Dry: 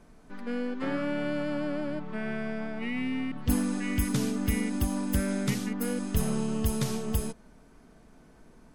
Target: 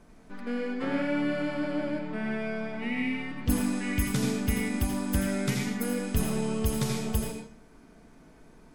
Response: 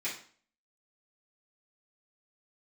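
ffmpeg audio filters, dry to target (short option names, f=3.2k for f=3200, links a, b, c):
-filter_complex "[0:a]asplit=2[a][b];[1:a]atrim=start_sample=2205,adelay=80[c];[b][c]afir=irnorm=-1:irlink=0,volume=-6dB[d];[a][d]amix=inputs=2:normalize=0"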